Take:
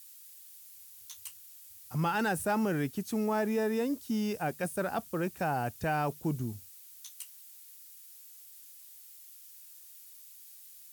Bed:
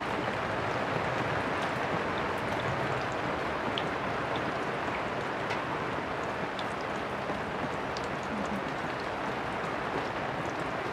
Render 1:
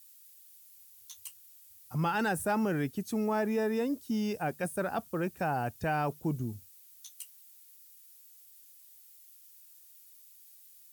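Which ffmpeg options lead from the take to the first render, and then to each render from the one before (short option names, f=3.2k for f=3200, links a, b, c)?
-af "afftdn=nr=6:nf=-53"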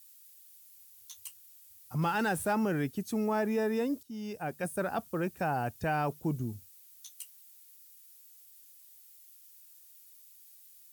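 -filter_complex "[0:a]asettb=1/sr,asplit=3[a][b][c];[a]atrim=end=2.024[d];[b]atrim=start=2.02:end=2.53,asetpts=PTS-STARTPTS,afade=t=in:d=0.004:c=qsin,afade=t=out:st=0.506:d=0.004:c=qsin,acrusher=bits=9:dc=4:mix=0:aa=0.000001[e];[c]atrim=start=2.526[f];[d][e]acrossfade=d=0.004:c1=hsin:c2=qsin[g];[g][f]acrossfade=d=0.004:c1=qsin:c2=hsin,asplit=2[h][i];[h]atrim=end=4.03,asetpts=PTS-STARTPTS,afade=t=out:st=4.026:d=0.004:c=hsin:silence=0.188365[j];[i]atrim=start=4.03,asetpts=PTS-STARTPTS,afade=t=in:d=0.71:silence=0.188365[k];[j][k]concat=n=2:v=0:a=1"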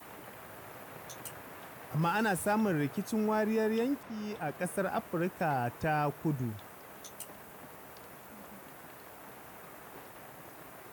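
-filter_complex "[1:a]volume=-17.5dB[a];[0:a][a]amix=inputs=2:normalize=0"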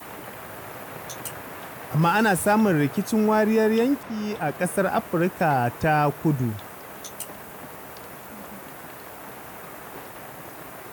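-af "volume=10dB"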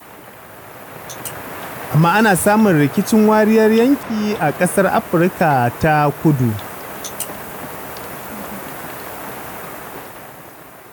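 -af "alimiter=limit=-14dB:level=0:latency=1:release=274,dynaudnorm=f=230:g=11:m=10.5dB"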